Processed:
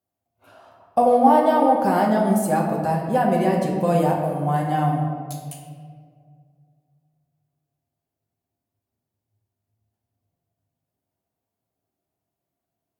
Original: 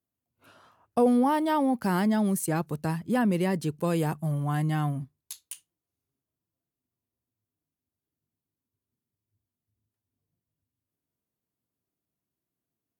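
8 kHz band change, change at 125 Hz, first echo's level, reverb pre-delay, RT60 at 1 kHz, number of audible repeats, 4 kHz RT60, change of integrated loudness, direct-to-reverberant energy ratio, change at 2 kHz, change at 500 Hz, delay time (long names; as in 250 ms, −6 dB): +1.0 dB, +4.0 dB, no echo audible, 5 ms, 1.7 s, no echo audible, 1.0 s, +7.0 dB, −2.0 dB, +4.0 dB, +9.5 dB, no echo audible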